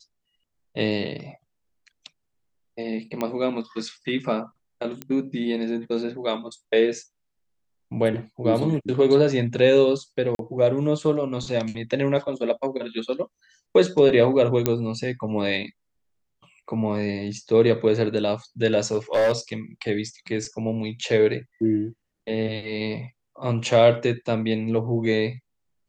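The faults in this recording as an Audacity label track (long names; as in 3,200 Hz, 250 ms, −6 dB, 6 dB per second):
3.210000	3.210000	click −13 dBFS
5.020000	5.020000	click −16 dBFS
10.350000	10.390000	drop-out 42 ms
14.660000	14.660000	click −6 dBFS
18.920000	19.320000	clipping −16 dBFS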